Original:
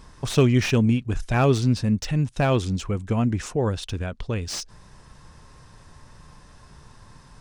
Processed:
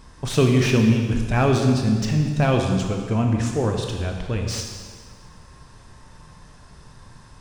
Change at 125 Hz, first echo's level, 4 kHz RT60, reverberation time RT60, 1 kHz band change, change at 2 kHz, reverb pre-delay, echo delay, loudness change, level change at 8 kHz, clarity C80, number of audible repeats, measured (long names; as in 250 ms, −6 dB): +2.0 dB, no echo audible, 1.6 s, 1.7 s, +2.0 dB, +2.0 dB, 8 ms, no echo audible, +2.5 dB, +2.0 dB, 5.0 dB, no echo audible